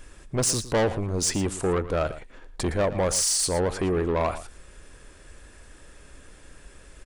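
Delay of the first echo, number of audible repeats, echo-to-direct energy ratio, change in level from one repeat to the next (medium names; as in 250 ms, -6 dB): 114 ms, 1, -14.5 dB, no regular repeats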